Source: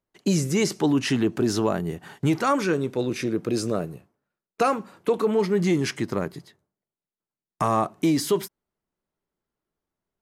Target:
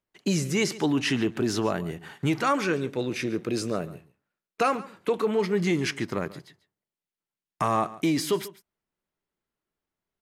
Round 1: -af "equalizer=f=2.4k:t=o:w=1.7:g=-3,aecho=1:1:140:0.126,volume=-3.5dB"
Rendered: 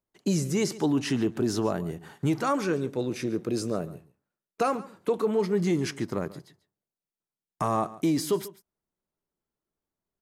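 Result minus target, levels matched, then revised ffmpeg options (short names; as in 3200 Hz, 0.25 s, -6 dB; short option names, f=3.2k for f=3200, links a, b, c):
2000 Hz band -6.0 dB
-af "equalizer=f=2.4k:t=o:w=1.7:g=5.5,aecho=1:1:140:0.126,volume=-3.5dB"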